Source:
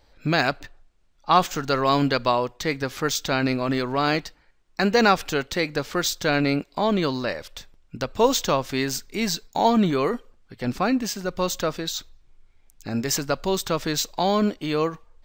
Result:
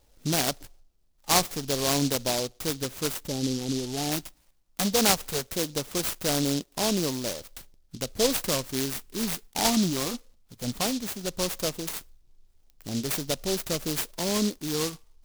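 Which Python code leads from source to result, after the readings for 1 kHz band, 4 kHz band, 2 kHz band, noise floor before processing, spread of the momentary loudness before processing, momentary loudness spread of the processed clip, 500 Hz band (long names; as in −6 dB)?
−10.0 dB, −1.0 dB, −8.5 dB, −60 dBFS, 11 LU, 12 LU, −6.5 dB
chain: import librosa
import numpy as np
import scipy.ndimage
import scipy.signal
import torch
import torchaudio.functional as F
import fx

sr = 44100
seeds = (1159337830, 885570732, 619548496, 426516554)

y = fx.filter_lfo_notch(x, sr, shape='saw_down', hz=0.18, low_hz=280.0, high_hz=2800.0, q=2.6)
y = fx.spec_box(y, sr, start_s=3.12, length_s=1.0, low_hz=890.0, high_hz=5800.0, gain_db=-29)
y = fx.noise_mod_delay(y, sr, seeds[0], noise_hz=4700.0, depth_ms=0.19)
y = F.gain(torch.from_numpy(y), -4.0).numpy()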